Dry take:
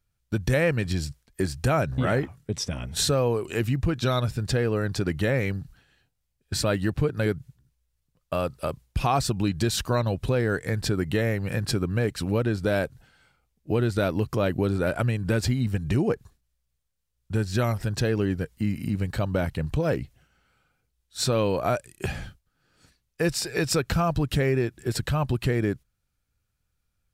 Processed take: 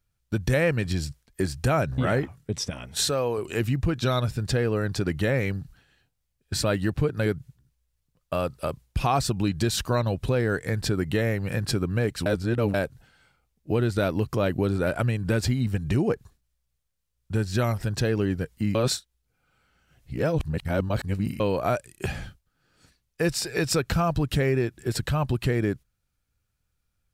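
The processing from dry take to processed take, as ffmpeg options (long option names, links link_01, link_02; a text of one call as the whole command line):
ffmpeg -i in.wav -filter_complex "[0:a]asettb=1/sr,asplit=3[link_01][link_02][link_03];[link_01]atrim=end=2.704[link_04];[link_02]atrim=start=2.7:end=3.38,asetpts=PTS-STARTPTS,afade=type=in:duration=0.004:curve=qsin,afade=type=out:start_time=0.676:duration=0.004:curve=qsin,lowshelf=frequency=240:gain=-10[link_05];[link_03]atrim=start=3.376[link_06];[link_04][link_05]acrossfade=duration=0.004:curve1=hsin:curve2=qsin[link_07];[link_07][link_06]acrossfade=duration=0.004:curve1=qsin:curve2=hsin,asplit=5[link_08][link_09][link_10][link_11][link_12];[link_08]atrim=end=12.262[link_13];[link_09]atrim=start=12.258:end=12.742,asetpts=PTS-STARTPTS,areverse[link_14];[link_10]atrim=start=12.738:end=18.752[link_15];[link_11]atrim=start=18.748:end=21.402,asetpts=PTS-STARTPTS,areverse[link_16];[link_12]atrim=start=21.398[link_17];[link_13][link_14]acrossfade=duration=0.004:curve1=hsin:curve2=hsin[link_18];[link_18][link_15]acrossfade=duration=0.004:curve1=hsin:curve2=hsin[link_19];[link_19][link_16]acrossfade=duration=0.004:curve1=hsin:curve2=hsin[link_20];[link_20][link_17]acrossfade=duration=0.004:curve1=hsin:curve2=hsin" out.wav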